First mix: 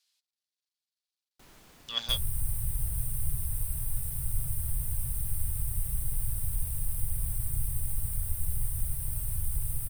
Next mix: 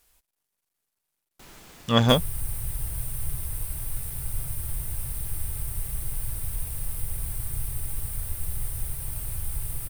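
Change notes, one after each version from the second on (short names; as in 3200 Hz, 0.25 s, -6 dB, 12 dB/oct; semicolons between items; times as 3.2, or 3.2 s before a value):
speech: remove band-pass 4300 Hz, Q 2.5; first sound +7.0 dB; reverb: on, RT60 1.1 s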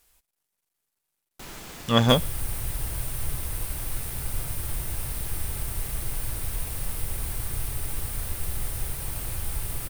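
speech: send on; first sound +7.5 dB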